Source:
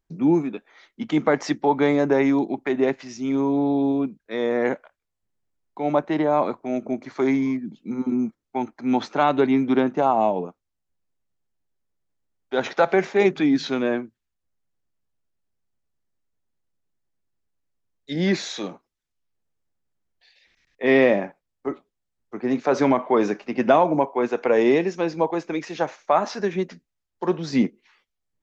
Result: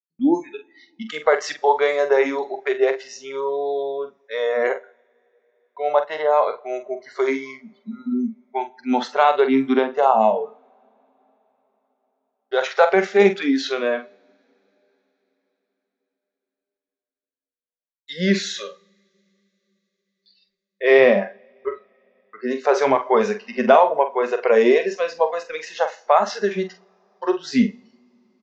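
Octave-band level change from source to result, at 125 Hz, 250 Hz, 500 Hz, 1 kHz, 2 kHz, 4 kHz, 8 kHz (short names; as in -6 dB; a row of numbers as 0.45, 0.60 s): -4.5 dB, -2.5 dB, +3.5 dB, +4.0 dB, +4.0 dB, +4.0 dB, n/a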